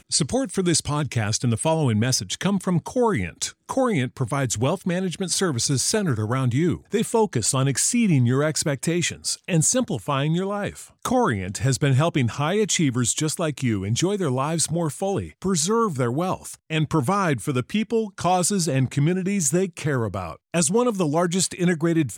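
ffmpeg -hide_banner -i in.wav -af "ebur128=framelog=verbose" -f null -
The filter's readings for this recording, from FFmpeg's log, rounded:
Integrated loudness:
  I:         -22.6 LUFS
  Threshold: -32.6 LUFS
Loudness range:
  LRA:         2.2 LU
  Threshold: -42.7 LUFS
  LRA low:   -23.6 LUFS
  LRA high:  -21.4 LUFS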